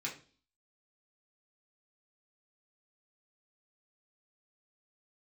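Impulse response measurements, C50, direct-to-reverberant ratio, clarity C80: 10.5 dB, −4.5 dB, 15.5 dB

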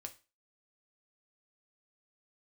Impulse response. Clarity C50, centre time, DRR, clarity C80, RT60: 16.0 dB, 6 ms, 5.0 dB, 22.0 dB, 0.30 s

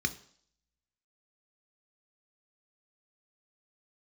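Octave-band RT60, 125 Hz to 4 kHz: 0.50, 0.55, 0.55, 0.55, 0.55, 0.70 seconds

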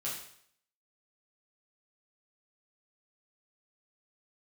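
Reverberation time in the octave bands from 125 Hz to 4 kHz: 0.60, 0.60, 0.65, 0.65, 0.65, 0.60 seconds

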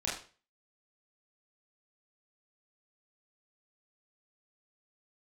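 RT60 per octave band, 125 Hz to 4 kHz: 0.40, 0.40, 0.40, 0.35, 0.35, 0.35 seconds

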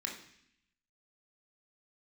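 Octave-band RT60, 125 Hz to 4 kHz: 1.0, 0.95, 0.65, 0.70, 0.90, 0.85 seconds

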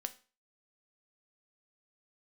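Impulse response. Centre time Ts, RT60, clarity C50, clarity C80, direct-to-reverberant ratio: 4 ms, 0.35 s, 17.0 dB, 22.0 dB, 8.5 dB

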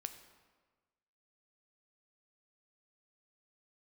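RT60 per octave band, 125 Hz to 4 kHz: 1.4, 1.4, 1.4, 1.4, 1.2, 1.0 seconds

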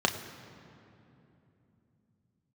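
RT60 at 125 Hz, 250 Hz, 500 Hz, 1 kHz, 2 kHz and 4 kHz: 5.1, 4.5, 3.3, 2.7, 2.4, 1.7 seconds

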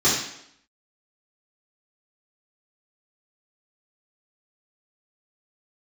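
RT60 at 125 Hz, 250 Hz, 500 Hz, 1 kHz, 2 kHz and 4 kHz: 0.60, 0.80, 0.75, 0.75, 0.70, 0.70 seconds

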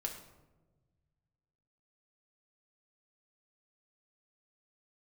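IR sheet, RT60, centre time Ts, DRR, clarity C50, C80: 1.2 s, 22 ms, 1.0 dB, 7.5 dB, 10.0 dB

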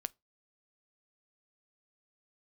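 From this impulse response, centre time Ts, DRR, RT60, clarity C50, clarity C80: 1 ms, 17.5 dB, 0.25 s, 31.0 dB, 40.0 dB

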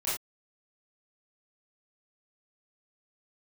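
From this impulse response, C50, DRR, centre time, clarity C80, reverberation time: 1.5 dB, −10.5 dB, 48 ms, 8.0 dB, non-exponential decay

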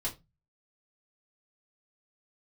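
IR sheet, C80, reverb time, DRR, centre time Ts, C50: 23.0 dB, 0.20 s, −5.0 dB, 14 ms, 15.0 dB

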